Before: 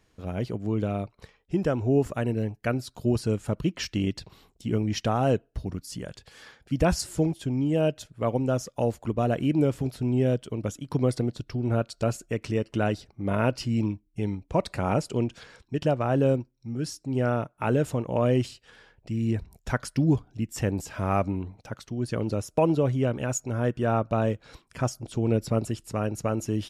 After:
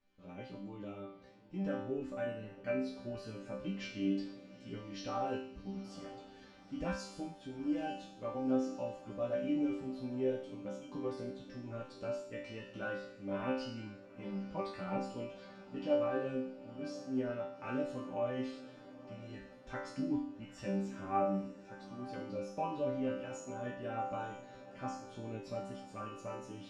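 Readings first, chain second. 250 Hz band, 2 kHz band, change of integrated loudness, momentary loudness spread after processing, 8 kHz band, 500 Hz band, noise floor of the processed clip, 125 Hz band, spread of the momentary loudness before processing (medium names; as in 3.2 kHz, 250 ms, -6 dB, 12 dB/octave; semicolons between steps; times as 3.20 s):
-11.0 dB, -10.0 dB, -12.0 dB, 14 LU, -19.0 dB, -11.0 dB, -56 dBFS, -20.5 dB, 9 LU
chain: low-pass 4.7 kHz 12 dB/octave; chorus 1.4 Hz, delay 15.5 ms, depth 2.5 ms; chord resonator G3 sus4, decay 0.64 s; echo that smears into a reverb 862 ms, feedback 59%, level -15.5 dB; trim +12 dB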